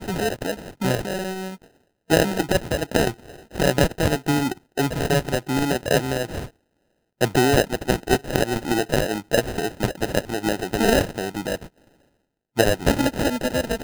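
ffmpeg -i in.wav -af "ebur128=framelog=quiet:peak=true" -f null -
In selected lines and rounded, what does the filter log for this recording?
Integrated loudness:
  I:         -22.9 LUFS
  Threshold: -33.4 LUFS
Loudness range:
  LRA:         2.1 LU
  Threshold: -43.3 LUFS
  LRA low:   -24.6 LUFS
  LRA high:  -22.4 LUFS
True peak:
  Peak:       -2.0 dBFS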